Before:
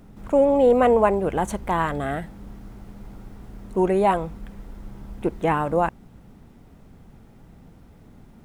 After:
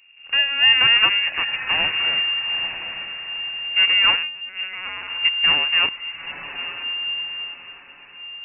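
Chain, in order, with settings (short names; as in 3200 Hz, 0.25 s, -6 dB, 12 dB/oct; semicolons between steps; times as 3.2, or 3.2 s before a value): spectral noise reduction 8 dB; full-wave rectifier; diffused feedback echo 0.911 s, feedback 41%, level -8 dB; 4.17–5.1 LPC vocoder at 8 kHz pitch kept; inverted band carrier 2800 Hz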